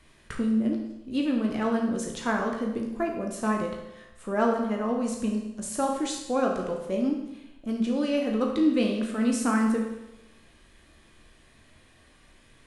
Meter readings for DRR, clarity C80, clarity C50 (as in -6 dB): 0.5 dB, 7.0 dB, 4.0 dB